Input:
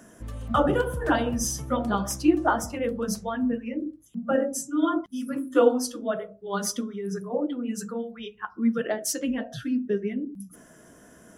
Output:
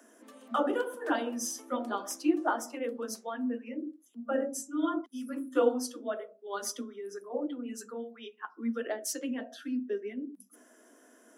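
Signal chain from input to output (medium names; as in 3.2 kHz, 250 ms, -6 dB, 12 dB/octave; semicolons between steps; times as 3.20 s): steep high-pass 230 Hz 96 dB/octave; trim -6.5 dB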